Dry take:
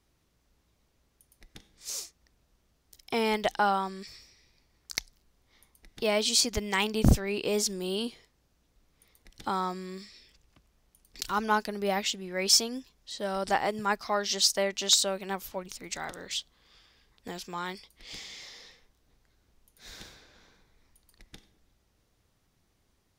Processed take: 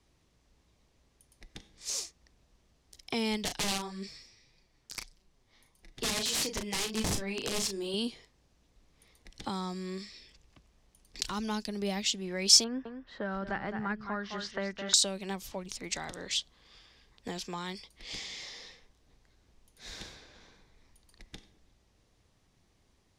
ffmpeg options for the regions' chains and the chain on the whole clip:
-filter_complex "[0:a]asettb=1/sr,asplit=3[a][b][c];[a]atrim=end=3.454[d];[b]atrim=start=3.45:end=7.94,asetpts=PTS-STARTPTS,afade=t=in:d=0.004:c=qsin,afade=t=out:st=4.486:d=0.004:c=qsin,flanger=delay=5.1:depth=4.2:regen=19:speed=1.7:shape=triangular,aeval=exprs='(mod(16.8*val(0)+1,2)-1)/16.8':c=same,asplit=2[e][f];[f]adelay=36,volume=-7dB[g];[e][g]amix=inputs=2:normalize=0,atrim=end_sample=198009[h];[c]atrim=start=7.936[i];[d][h]acrossfade=d=0.004:c1=hsin:c2=qsin[j];[j][i]acrossfade=d=0.004:c1=qsin:c2=hsin,asettb=1/sr,asplit=3[k][l][m];[k]atrim=end=12.644[n];[l]atrim=start=12.64:end=14.94,asetpts=PTS-STARTPTS,afade=t=in:d=0.004:c=qsin,afade=t=out:st=2.296:d=0.004:c=qsin,lowpass=f=1.5k:t=q:w=4.5,aecho=1:1:211:0.316,atrim=end_sample=101430[o];[m]atrim=start=14.936[p];[n][o]acrossfade=d=0.004:c1=hsin:c2=qsin[q];[q][p]acrossfade=d=0.004:c1=qsin:c2=hsin,acrossover=split=260|3000[r][s][t];[s]acompressor=threshold=-39dB:ratio=6[u];[r][u][t]amix=inputs=3:normalize=0,lowpass=9.1k,equalizer=f=1.4k:w=6:g=-4.5,volume=2.5dB"

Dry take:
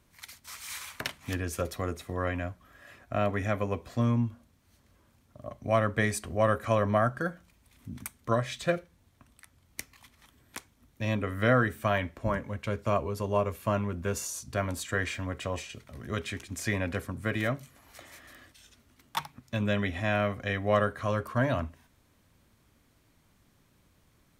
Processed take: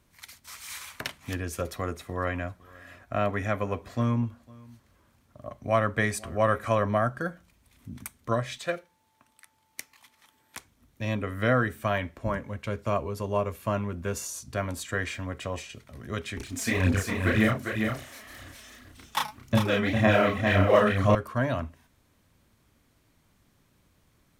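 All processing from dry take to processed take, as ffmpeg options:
-filter_complex "[0:a]asettb=1/sr,asplit=3[a][b][c];[a]atrim=end=1.674[d];[b]atrim=start=1.67:end=6.89,asetpts=PTS-STARTPTS,afade=t=in:d=0.004:c=qsin,afade=t=out:st=5.216:d=0.004:c=qsin,equalizer=f=1.3k:t=o:w=1.7:g=3,aecho=1:1:504:0.0668,atrim=end_sample=230202[e];[c]atrim=start=6.886[f];[d][e]acrossfade=d=0.004:c1=hsin:c2=qsin[g];[g][f]acrossfade=d=0.004:c1=qsin:c2=hsin,asettb=1/sr,asplit=3[h][i][j];[h]atrim=end=8.584[k];[i]atrim=start=8.58:end=10.57,asetpts=PTS-STARTPTS,afade=t=in:d=0.004:c=qsin,afade=t=out:st=1.986:d=0.004:c=qsin,highpass=f=470:p=1,aeval=exprs='val(0)+0.000316*sin(2*PI*880*n/s)':c=same[l];[j]atrim=start=10.566[m];[k][l]acrossfade=d=0.004:c1=hsin:c2=qsin[n];[n][m]acrossfade=d=0.004:c1=qsin:c2=hsin,asettb=1/sr,asplit=3[o][p][q];[o]atrim=end=16.374[r];[p]atrim=start=16.37:end=21.15,asetpts=PTS-STARTPTS,afade=t=in:d=0.004:c=qsin,afade=t=out:st=4.776:d=0.004:c=qsin,aphaser=in_gain=1:out_gain=1:delay=4.7:decay=0.72:speed=1.9:type=sinusoidal,asplit=2[s][t];[t]adelay=32,volume=-2.5dB[u];[s][u]amix=inputs=2:normalize=0,atrim=end_sample=210798,aecho=1:1:402:0.562,atrim=end_sample=210798[v];[q]atrim=start=21.146[w];[r][v]acrossfade=d=0.004:c1=hsin:c2=qsin[x];[x][w]acrossfade=d=0.004:c1=qsin:c2=hsin"

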